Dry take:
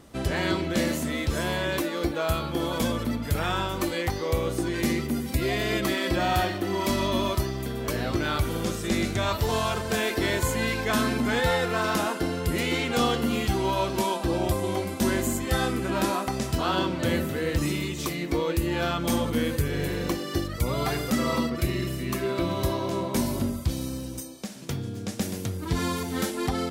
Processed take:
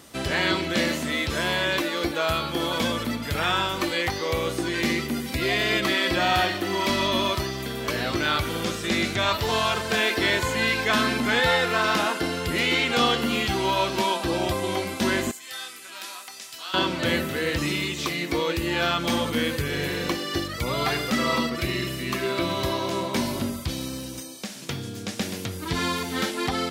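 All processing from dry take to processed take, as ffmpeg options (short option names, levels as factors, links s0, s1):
-filter_complex "[0:a]asettb=1/sr,asplit=3[s0][s1][s2];[s0]atrim=end=15.314[s3];[s1]atrim=start=15.31:end=16.74,asetpts=PTS-STARTPTS,afade=t=in:d=0.004:c=qsin,afade=t=out:st=1.426:d=0.004:c=qsin,lowpass=f=3700:p=1,aderivative,asoftclip=type=hard:threshold=0.0376[s4];[s2]atrim=start=16.736[s5];[s3][s4]acrossfade=d=0.004:c1=hsin:c2=qsin[s6];[s6][s5]acrossfade=d=0.004:c1=qsin:c2=hsin,highpass=f=110:p=1,acrossover=split=4600[s7][s8];[s8]acompressor=threshold=0.00316:ratio=4:attack=1:release=60[s9];[s7][s9]amix=inputs=2:normalize=0,tiltshelf=f=1400:g=-5,volume=1.78"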